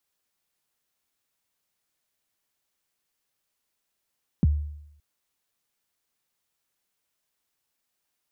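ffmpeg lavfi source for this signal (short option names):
-f lavfi -i "aevalsrc='0.2*pow(10,-3*t/0.79)*sin(2*PI*(250*0.026/log(74/250)*(exp(log(74/250)*min(t,0.026)/0.026)-1)+74*max(t-0.026,0)))':d=0.57:s=44100"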